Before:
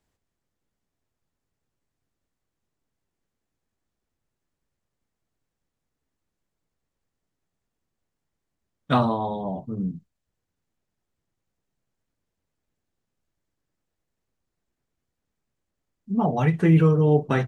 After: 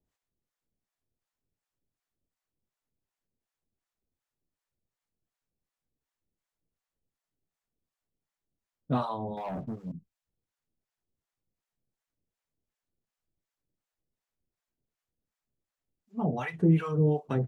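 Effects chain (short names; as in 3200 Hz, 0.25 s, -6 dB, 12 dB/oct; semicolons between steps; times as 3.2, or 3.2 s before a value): harmonic tremolo 2.7 Hz, depth 100%, crossover 640 Hz; 9.37–9.92 sample leveller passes 2; gain -3 dB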